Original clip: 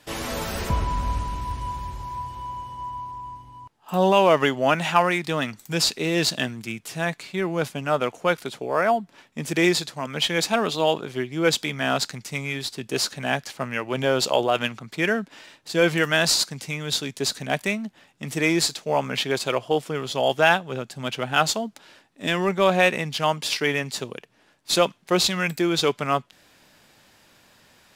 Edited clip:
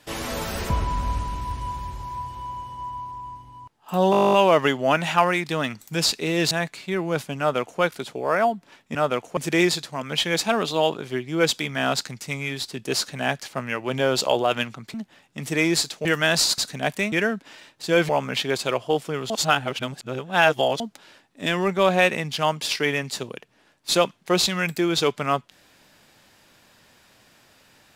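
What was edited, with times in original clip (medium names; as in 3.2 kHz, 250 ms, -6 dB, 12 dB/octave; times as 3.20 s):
4.11 s: stutter 0.02 s, 12 plays
6.29–6.97 s: delete
7.85–8.27 s: copy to 9.41 s
14.98–15.95 s: swap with 17.79–18.90 s
16.48–17.25 s: delete
20.11–21.61 s: reverse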